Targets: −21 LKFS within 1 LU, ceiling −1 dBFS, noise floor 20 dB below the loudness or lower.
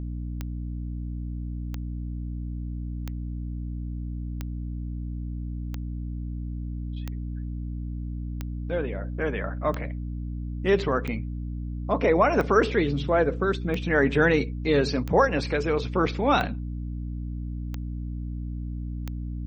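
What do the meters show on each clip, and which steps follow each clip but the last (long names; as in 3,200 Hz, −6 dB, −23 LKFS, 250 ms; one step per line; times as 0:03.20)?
number of clicks 15; mains hum 60 Hz; hum harmonics up to 300 Hz; level of the hum −30 dBFS; integrated loudness −28.0 LKFS; sample peak −8.0 dBFS; target loudness −21.0 LKFS
→ click removal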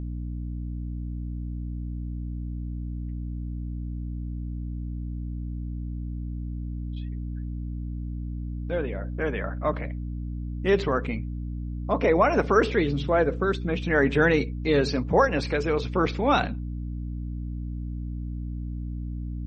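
number of clicks 0; mains hum 60 Hz; hum harmonics up to 300 Hz; level of the hum −30 dBFS
→ hum removal 60 Hz, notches 5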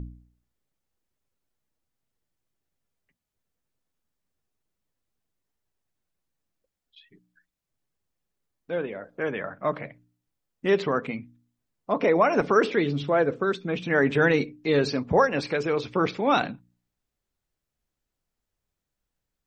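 mains hum none found; integrated loudness −25.0 LKFS; sample peak −9.0 dBFS; target loudness −21.0 LKFS
→ level +4 dB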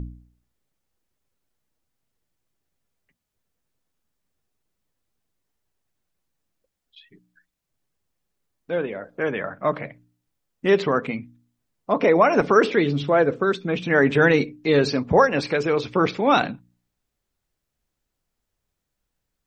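integrated loudness −21.0 LKFS; sample peak −5.0 dBFS; background noise floor −81 dBFS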